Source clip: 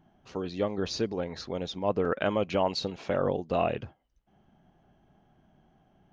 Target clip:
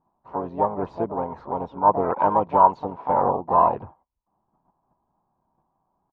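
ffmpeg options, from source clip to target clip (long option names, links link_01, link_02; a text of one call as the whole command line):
ffmpeg -i in.wav -filter_complex "[0:a]asplit=3[link_01][link_02][link_03];[link_02]asetrate=35002,aresample=44100,atempo=1.25992,volume=-15dB[link_04];[link_03]asetrate=66075,aresample=44100,atempo=0.66742,volume=-6dB[link_05];[link_01][link_04][link_05]amix=inputs=3:normalize=0,agate=range=-15dB:threshold=-58dB:ratio=16:detection=peak,lowpass=frequency=960:width_type=q:width=7.6" out.wav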